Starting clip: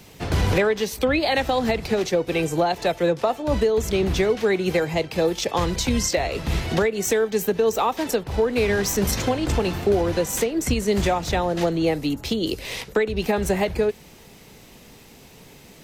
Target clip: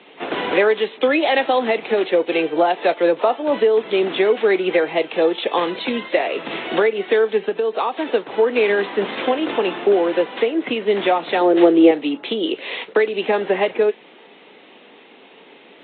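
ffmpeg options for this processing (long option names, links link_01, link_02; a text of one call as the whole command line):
ffmpeg -i in.wav -filter_complex "[0:a]highpass=frequency=280:width=0.5412,highpass=frequency=280:width=1.3066,asettb=1/sr,asplit=3[link_01][link_02][link_03];[link_01]atrim=end=7.444[link_04];[link_02]atrim=start=7.44:end=8.08,asetpts=PTS-STARTPTS,afade=type=in:duration=0.004:curve=qsin,afade=type=out:start_time=0.636:duration=0.004:curve=qsin,acompressor=threshold=-22dB:ratio=6[link_05];[link_03]atrim=start=8.076[link_06];[link_04][link_05]acrossfade=duration=0.004:curve1=hsin:curve2=qsin[link_07];[link_07][link_06]acrossfade=duration=0.004:curve1=qsin:curve2=hsin,asettb=1/sr,asplit=3[link_08][link_09][link_10];[link_08]atrim=end=11.414[link_11];[link_09]atrim=start=11.41:end=11.91,asetpts=PTS-STARTPTS,afade=type=in:duration=0.004:curve=qsin,afade=type=out:start_time=0.496:duration=0.004:curve=qsin,equalizer=frequency=370:width_type=o:width=0.69:gain=10.5[link_12];[link_10]atrim=start=11.906[link_13];[link_11][link_12]acrossfade=duration=0.004:curve1=hsin:curve2=qsin[link_14];[link_14][link_13]acrossfade=duration=0.004:curve1=qsin:curve2=hsin,aresample=8000,aresample=44100,volume=5dB" -ar 44100 -c:a libvorbis -b:a 32k out.ogg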